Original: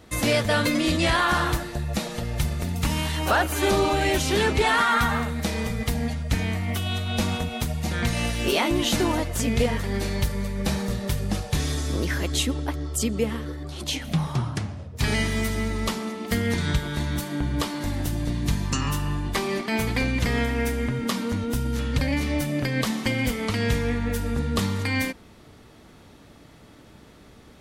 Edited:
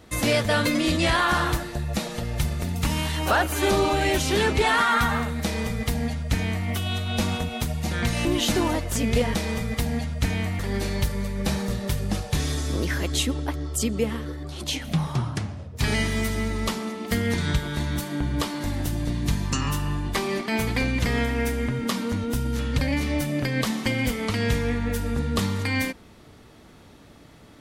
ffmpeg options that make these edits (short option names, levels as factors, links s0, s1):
-filter_complex "[0:a]asplit=4[s0][s1][s2][s3];[s0]atrim=end=8.252[s4];[s1]atrim=start=8.688:end=9.792[s5];[s2]atrim=start=5.438:end=6.682[s6];[s3]atrim=start=9.788[s7];[s4][s5]acrossfade=d=0.004:c1=hsin:c2=hsin[s8];[s8][s6]acrossfade=d=0.004:c1=hsin:c2=hsin[s9];[s9][s7]acrossfade=d=0.004:c1=hsin:c2=hsin"